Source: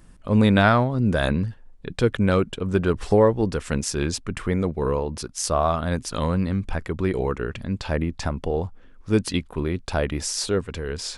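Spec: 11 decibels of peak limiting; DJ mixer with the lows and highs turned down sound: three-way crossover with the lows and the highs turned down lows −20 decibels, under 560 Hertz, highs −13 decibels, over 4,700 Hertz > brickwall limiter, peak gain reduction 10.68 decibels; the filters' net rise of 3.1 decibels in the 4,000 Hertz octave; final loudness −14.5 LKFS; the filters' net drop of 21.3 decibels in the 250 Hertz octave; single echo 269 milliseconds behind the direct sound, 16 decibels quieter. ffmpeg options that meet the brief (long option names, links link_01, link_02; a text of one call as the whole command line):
ffmpeg -i in.wav -filter_complex "[0:a]equalizer=frequency=250:width_type=o:gain=-6,equalizer=frequency=4000:width_type=o:gain=7.5,alimiter=limit=-14.5dB:level=0:latency=1,acrossover=split=560 4700:gain=0.1 1 0.224[link_01][link_02][link_03];[link_01][link_02][link_03]amix=inputs=3:normalize=0,aecho=1:1:269:0.158,volume=22.5dB,alimiter=limit=-2dB:level=0:latency=1" out.wav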